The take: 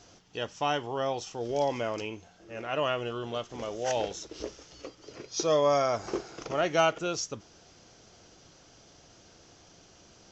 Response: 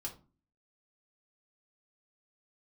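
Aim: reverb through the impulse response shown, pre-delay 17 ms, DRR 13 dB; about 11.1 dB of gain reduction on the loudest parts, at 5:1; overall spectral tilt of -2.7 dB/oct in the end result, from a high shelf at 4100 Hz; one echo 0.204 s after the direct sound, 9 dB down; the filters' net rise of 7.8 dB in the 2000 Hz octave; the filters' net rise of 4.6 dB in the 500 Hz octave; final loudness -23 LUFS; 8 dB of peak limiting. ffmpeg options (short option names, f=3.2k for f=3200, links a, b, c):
-filter_complex "[0:a]equalizer=f=500:t=o:g=5,equalizer=f=2k:t=o:g=8.5,highshelf=f=4.1k:g=8.5,acompressor=threshold=-28dB:ratio=5,alimiter=level_in=1dB:limit=-24dB:level=0:latency=1,volume=-1dB,aecho=1:1:204:0.355,asplit=2[a][b];[1:a]atrim=start_sample=2205,adelay=17[c];[b][c]afir=irnorm=-1:irlink=0,volume=-11.5dB[d];[a][d]amix=inputs=2:normalize=0,volume=12.5dB"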